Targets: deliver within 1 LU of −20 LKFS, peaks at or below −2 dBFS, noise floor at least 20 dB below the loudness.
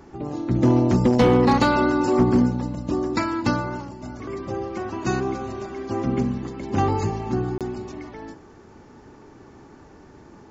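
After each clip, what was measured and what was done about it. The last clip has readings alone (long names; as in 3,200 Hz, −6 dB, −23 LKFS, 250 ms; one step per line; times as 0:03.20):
share of clipped samples 0.4%; peaks flattened at −10.5 dBFS; number of dropouts 1; longest dropout 27 ms; integrated loudness −22.5 LKFS; sample peak −10.5 dBFS; target loudness −20.0 LKFS
→ clipped peaks rebuilt −10.5 dBFS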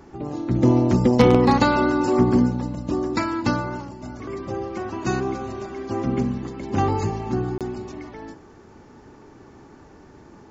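share of clipped samples 0.0%; number of dropouts 1; longest dropout 27 ms
→ repair the gap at 0:07.58, 27 ms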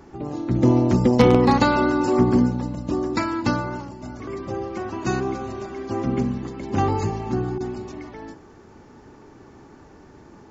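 number of dropouts 0; integrated loudness −22.0 LKFS; sample peak −1.5 dBFS; target loudness −20.0 LKFS
→ level +2 dB
brickwall limiter −2 dBFS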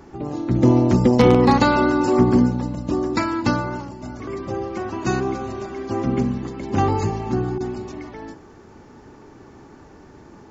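integrated loudness −20.0 LKFS; sample peak −2.0 dBFS; background noise floor −46 dBFS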